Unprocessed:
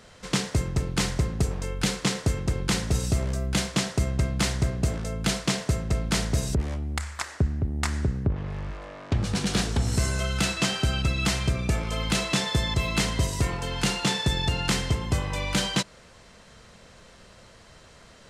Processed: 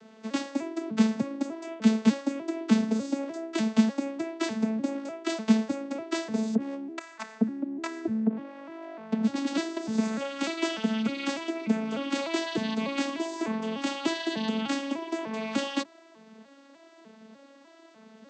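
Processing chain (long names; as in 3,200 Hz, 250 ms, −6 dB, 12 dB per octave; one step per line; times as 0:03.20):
vocoder with an arpeggio as carrier major triad, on A3, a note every 299 ms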